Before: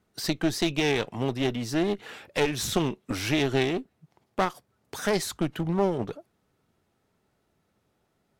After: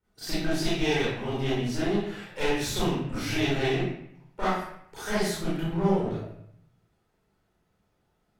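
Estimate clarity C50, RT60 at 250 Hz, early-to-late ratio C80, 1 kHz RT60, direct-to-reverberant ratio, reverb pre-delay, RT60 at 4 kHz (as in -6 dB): -3.5 dB, 0.85 s, 2.0 dB, 0.70 s, -12.5 dB, 29 ms, 0.55 s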